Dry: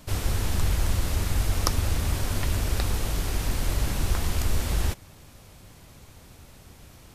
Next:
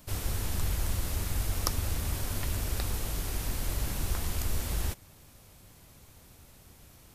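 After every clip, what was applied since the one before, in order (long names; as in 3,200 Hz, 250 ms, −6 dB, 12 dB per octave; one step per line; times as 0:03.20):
high-shelf EQ 10,000 Hz +10 dB
level −6.5 dB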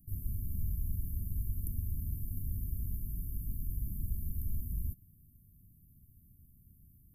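inverse Chebyshev band-stop filter 860–4,400 Hz, stop band 70 dB
level −4 dB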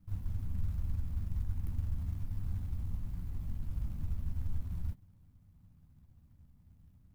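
running median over 41 samples
high-shelf EQ 7,900 Hz +9 dB
flanger 0.4 Hz, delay 10 ms, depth 3.5 ms, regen −42%
level +4.5 dB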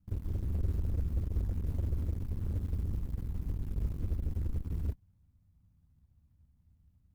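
soft clipping −27 dBFS, distortion −19 dB
harmonic generator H 7 −14 dB, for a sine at −27.5 dBFS
parametric band 62 Hz +6 dB 1.4 octaves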